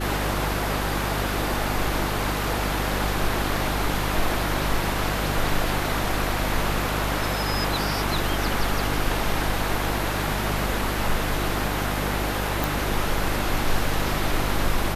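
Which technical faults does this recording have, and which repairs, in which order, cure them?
hum 50 Hz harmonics 7 -29 dBFS
12.64 pop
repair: de-click; de-hum 50 Hz, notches 7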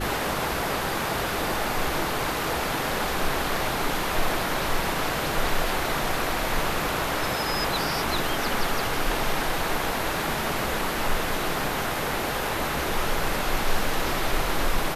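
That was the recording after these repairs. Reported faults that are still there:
none

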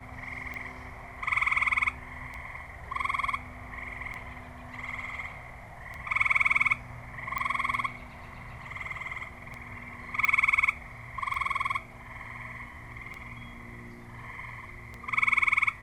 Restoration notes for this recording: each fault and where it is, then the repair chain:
tick 33 1/3 rpm -25 dBFS
7.38 pop -17 dBFS
10.25 pop -13 dBFS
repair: de-click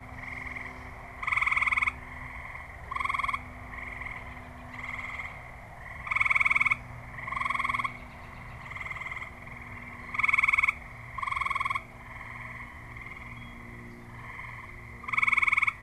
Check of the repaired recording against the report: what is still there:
none

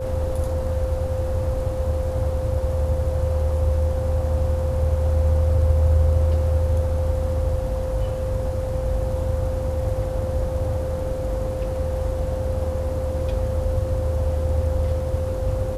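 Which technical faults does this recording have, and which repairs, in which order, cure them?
tone 520 Hz -27 dBFS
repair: notch 520 Hz, Q 30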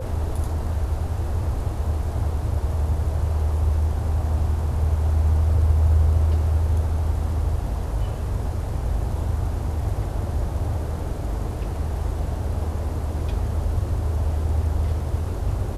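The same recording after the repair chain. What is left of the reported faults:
none

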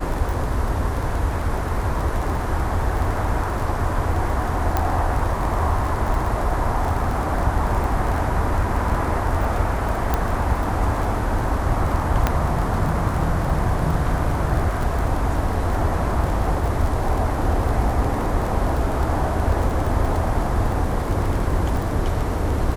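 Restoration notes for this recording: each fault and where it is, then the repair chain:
crackle 25/s -24 dBFS
4.77 pop -7 dBFS
10.14 pop -7 dBFS
12.27 pop -5 dBFS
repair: de-click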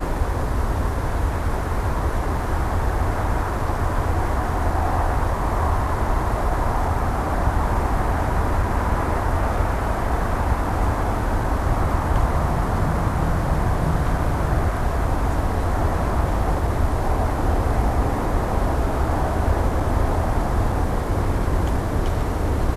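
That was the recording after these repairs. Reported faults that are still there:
none

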